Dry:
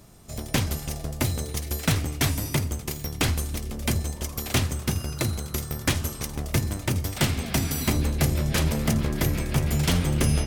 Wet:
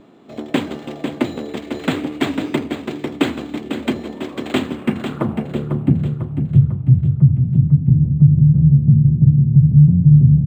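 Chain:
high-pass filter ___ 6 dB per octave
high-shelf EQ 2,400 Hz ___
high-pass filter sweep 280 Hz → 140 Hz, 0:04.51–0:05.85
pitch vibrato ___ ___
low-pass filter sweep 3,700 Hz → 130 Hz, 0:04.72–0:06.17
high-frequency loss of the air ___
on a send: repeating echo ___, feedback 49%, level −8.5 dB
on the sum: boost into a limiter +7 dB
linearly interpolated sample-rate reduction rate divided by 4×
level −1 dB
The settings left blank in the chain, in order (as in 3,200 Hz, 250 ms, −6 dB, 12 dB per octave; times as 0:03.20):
41 Hz, −7 dB, 0.53 Hz, 14 cents, 180 metres, 498 ms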